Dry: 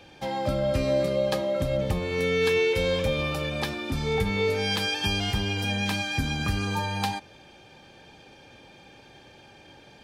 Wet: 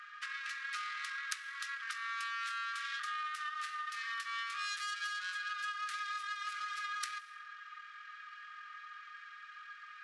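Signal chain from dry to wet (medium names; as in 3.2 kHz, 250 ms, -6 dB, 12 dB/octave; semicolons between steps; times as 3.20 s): tracing distortion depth 0.19 ms; rippled Chebyshev high-pass 2.3 kHz, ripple 3 dB; plate-style reverb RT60 0.83 s, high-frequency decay 0.75×, DRR 12.5 dB; compression 12:1, threshold -43 dBFS, peak gain reduction 17.5 dB; pitch shift -11.5 st; trim +6.5 dB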